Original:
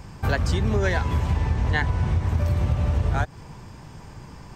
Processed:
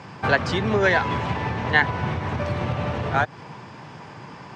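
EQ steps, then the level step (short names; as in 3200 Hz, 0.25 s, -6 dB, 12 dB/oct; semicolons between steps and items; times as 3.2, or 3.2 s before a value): HPF 110 Hz 24 dB/oct; LPF 3600 Hz 12 dB/oct; low shelf 340 Hz -9 dB; +8.5 dB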